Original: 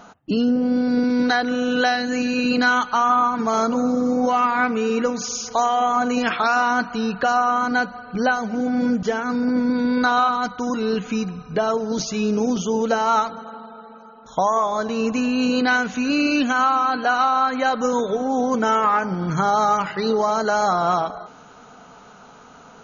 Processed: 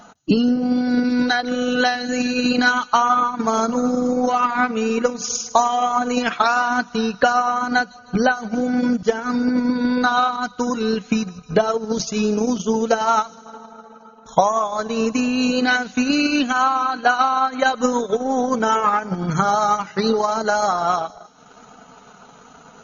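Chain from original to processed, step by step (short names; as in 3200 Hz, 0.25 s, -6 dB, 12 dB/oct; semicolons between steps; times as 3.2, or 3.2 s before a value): bin magnitudes rounded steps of 15 dB; tone controls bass +1 dB, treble +4 dB; transient shaper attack +8 dB, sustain -9 dB; on a send: thin delay 0.155 s, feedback 59%, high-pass 4600 Hz, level -15 dB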